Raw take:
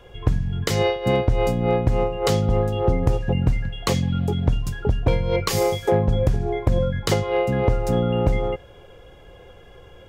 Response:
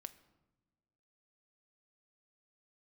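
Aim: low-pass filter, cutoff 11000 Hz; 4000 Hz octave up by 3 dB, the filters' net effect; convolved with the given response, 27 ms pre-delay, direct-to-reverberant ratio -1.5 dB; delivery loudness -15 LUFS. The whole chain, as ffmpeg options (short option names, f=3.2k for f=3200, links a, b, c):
-filter_complex "[0:a]lowpass=11k,equalizer=f=4k:t=o:g=4,asplit=2[a][b];[1:a]atrim=start_sample=2205,adelay=27[c];[b][c]afir=irnorm=-1:irlink=0,volume=7dB[d];[a][d]amix=inputs=2:normalize=0,volume=2.5dB"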